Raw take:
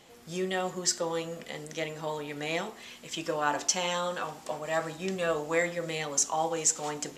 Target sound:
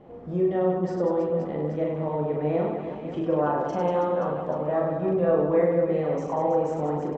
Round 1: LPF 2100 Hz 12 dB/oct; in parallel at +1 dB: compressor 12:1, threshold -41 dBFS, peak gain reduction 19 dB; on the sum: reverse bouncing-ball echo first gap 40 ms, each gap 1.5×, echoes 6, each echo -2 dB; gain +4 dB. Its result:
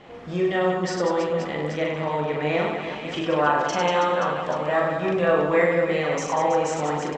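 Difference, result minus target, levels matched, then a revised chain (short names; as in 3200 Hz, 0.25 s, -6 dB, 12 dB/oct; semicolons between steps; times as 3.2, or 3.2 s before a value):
2000 Hz band +13.0 dB
LPF 640 Hz 12 dB/oct; in parallel at +1 dB: compressor 12:1, threshold -41 dBFS, peak gain reduction 16 dB; on the sum: reverse bouncing-ball echo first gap 40 ms, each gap 1.5×, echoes 6, each echo -2 dB; gain +4 dB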